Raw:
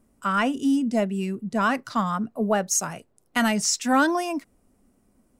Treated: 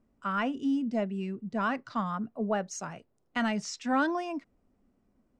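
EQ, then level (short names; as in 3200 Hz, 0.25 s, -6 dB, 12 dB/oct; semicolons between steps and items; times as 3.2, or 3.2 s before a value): air absorption 140 m; -6.5 dB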